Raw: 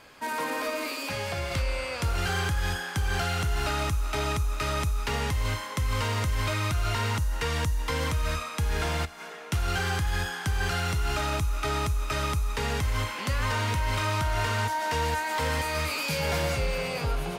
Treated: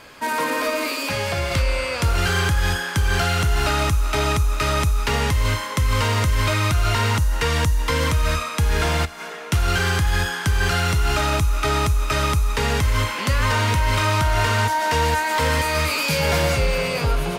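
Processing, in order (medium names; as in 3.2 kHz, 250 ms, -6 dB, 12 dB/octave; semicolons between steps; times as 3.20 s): band-stop 780 Hz, Q 17; trim +8 dB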